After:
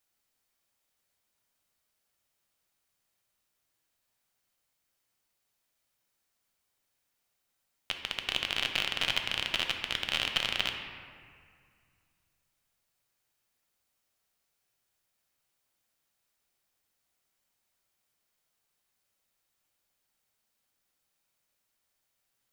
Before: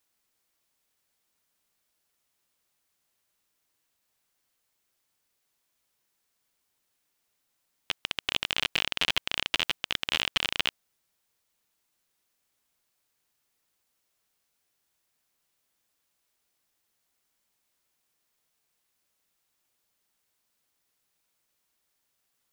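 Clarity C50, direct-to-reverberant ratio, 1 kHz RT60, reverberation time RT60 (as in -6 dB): 5.5 dB, 3.5 dB, 2.1 s, 2.1 s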